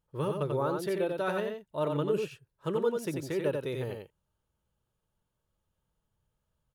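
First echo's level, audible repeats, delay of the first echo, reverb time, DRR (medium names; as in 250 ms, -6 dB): -4.5 dB, 1, 90 ms, no reverb, no reverb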